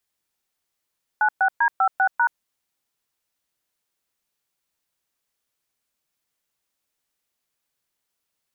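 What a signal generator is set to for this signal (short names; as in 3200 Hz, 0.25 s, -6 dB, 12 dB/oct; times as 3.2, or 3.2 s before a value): DTMF "96D56#", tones 77 ms, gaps 0.12 s, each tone -18 dBFS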